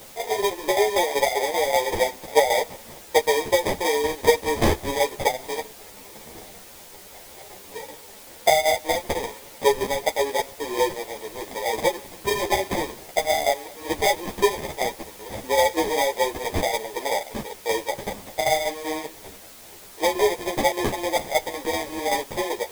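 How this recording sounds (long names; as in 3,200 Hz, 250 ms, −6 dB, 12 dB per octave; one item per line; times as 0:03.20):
aliases and images of a low sample rate 1,400 Hz, jitter 0%
tremolo saw down 5.2 Hz, depth 65%
a quantiser's noise floor 8 bits, dither triangular
a shimmering, thickened sound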